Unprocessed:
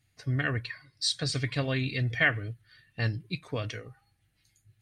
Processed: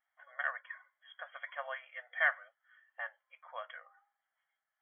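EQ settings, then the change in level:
linear-phase brick-wall high-pass 480 Hz
linear-phase brick-wall low-pass 3,400 Hz
phaser with its sweep stopped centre 1,100 Hz, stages 4
0.0 dB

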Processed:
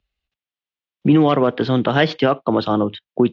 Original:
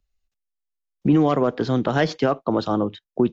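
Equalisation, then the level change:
high-pass filter 52 Hz
low-pass with resonance 3,200 Hz, resonance Q 2
+3.5 dB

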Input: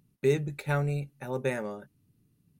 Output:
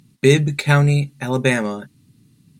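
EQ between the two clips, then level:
octave-band graphic EQ 125/250/1,000/2,000/4,000/8,000 Hz +7/+9/+5/+7/+11/+11 dB
+6.0 dB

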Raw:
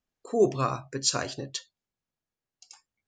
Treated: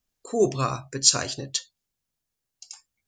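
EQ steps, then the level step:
low-shelf EQ 100 Hz +8.5 dB
high-shelf EQ 3,600 Hz +11.5 dB
0.0 dB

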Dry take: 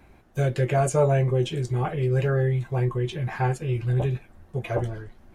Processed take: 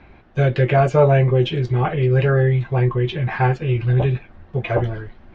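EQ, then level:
low-pass filter 4,300 Hz 12 dB per octave
high-frequency loss of the air 210 metres
high-shelf EQ 2,000 Hz +9 dB
+6.5 dB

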